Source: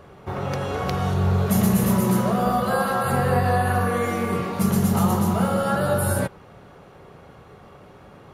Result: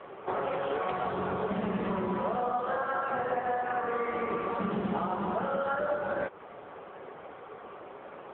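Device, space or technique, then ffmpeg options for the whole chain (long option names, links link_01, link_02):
voicemail: -af "highpass=350,lowpass=2700,acompressor=threshold=-32dB:ratio=10,volume=6dB" -ar 8000 -c:a libopencore_amrnb -b:a 6700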